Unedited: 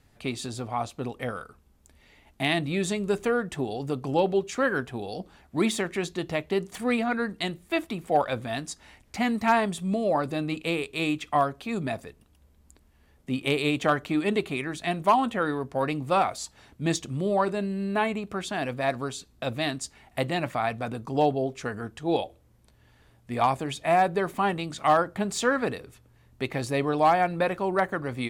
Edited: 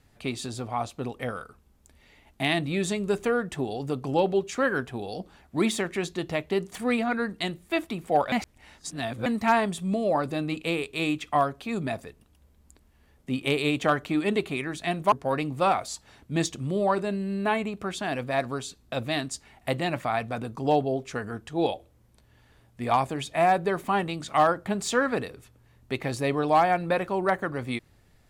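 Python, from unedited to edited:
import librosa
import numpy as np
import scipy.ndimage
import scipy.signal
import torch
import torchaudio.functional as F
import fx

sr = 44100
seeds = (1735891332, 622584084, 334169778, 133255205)

y = fx.edit(x, sr, fx.reverse_span(start_s=8.32, length_s=0.94),
    fx.cut(start_s=15.12, length_s=0.5), tone=tone)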